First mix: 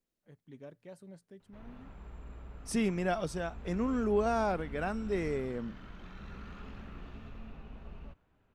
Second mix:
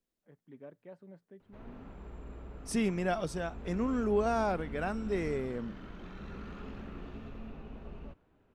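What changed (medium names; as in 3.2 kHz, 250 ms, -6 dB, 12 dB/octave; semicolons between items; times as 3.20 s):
first voice: add band-pass 170–2100 Hz; background: add peaking EQ 360 Hz +7 dB 1.8 oct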